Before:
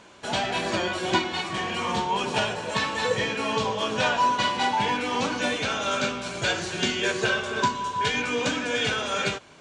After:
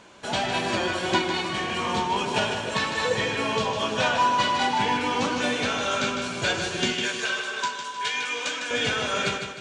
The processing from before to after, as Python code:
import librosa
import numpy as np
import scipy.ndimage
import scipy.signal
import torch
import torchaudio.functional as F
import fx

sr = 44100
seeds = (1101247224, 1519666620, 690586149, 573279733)

y = fx.highpass(x, sr, hz=1400.0, slope=6, at=(6.94, 8.71))
y = fx.echo_feedback(y, sr, ms=154, feedback_pct=43, wet_db=-7.0)